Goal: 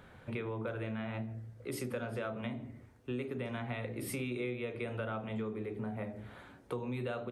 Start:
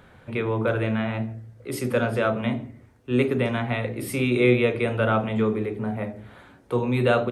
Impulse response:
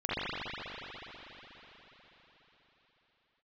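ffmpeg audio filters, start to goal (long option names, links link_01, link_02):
-af "acompressor=threshold=-31dB:ratio=6,volume=-4.5dB"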